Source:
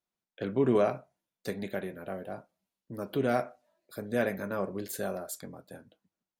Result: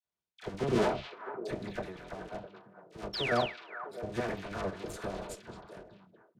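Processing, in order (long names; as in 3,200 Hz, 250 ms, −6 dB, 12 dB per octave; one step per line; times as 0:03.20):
sub-harmonics by changed cycles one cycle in 2, muted
high-shelf EQ 5,300 Hz +6 dB
all-pass dispersion lows, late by 53 ms, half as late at 1,100 Hz
sound drawn into the spectrogram fall, 0:03.13–0:03.41, 940–5,700 Hz −33 dBFS
in parallel at −10 dB: comparator with hysteresis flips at −31 dBFS
on the sum: high-frequency loss of the air 84 metres
notch comb filter 270 Hz
on a send: echo through a band-pass that steps 218 ms, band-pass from 3,200 Hz, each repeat −1.4 octaves, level −4 dB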